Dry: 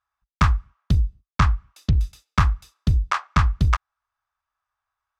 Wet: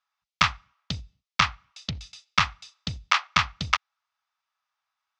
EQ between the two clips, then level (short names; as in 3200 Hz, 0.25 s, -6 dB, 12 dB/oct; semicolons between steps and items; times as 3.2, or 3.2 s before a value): dynamic EQ 2900 Hz, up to +4 dB, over -35 dBFS, Q 0.87; speaker cabinet 120–6000 Hz, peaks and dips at 350 Hz -10 dB, 1100 Hz -5 dB, 1600 Hz -7 dB; tilt shelf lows -9 dB, about 740 Hz; -1.0 dB